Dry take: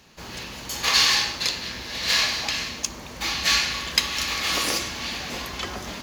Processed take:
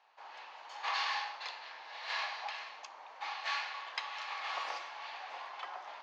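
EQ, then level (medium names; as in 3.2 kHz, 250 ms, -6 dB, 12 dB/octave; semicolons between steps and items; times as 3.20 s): ladder high-pass 710 Hz, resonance 55%; low-pass 3 kHz 6 dB/octave; distance through air 160 m; -1.5 dB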